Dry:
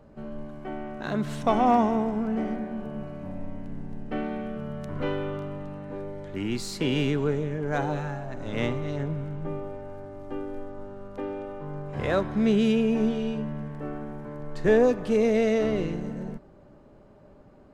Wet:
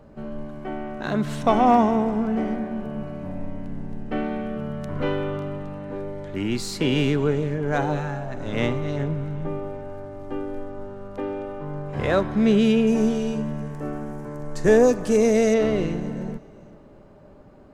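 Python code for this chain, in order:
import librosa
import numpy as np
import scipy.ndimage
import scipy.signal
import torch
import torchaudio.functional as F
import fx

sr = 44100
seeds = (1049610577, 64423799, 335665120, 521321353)

y = fx.high_shelf_res(x, sr, hz=4800.0, db=8.5, q=1.5, at=(12.87, 15.54))
y = fx.echo_feedback(y, sr, ms=388, feedback_pct=36, wet_db=-22.0)
y = F.gain(torch.from_numpy(y), 4.0).numpy()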